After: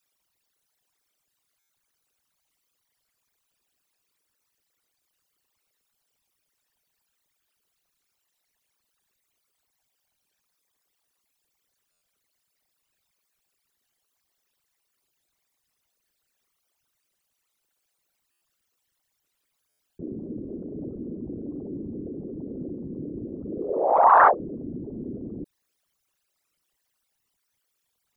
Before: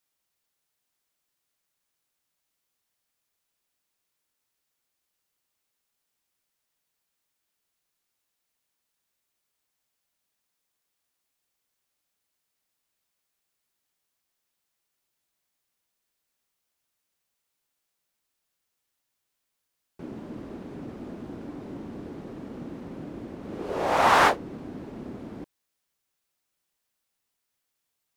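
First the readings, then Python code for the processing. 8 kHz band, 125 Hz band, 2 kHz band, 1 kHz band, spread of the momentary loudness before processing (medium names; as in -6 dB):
under -20 dB, +1.5 dB, -2.0 dB, +5.0 dB, 20 LU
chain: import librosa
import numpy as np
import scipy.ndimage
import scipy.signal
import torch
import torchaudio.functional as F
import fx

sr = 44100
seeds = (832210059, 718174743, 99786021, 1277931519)

y = fx.envelope_sharpen(x, sr, power=3.0)
y = fx.buffer_glitch(y, sr, at_s=(1.59, 11.92, 18.31, 19.69), block=512, repeats=8)
y = fx.record_warp(y, sr, rpm=33.33, depth_cents=100.0)
y = F.gain(torch.from_numpy(y), 4.0).numpy()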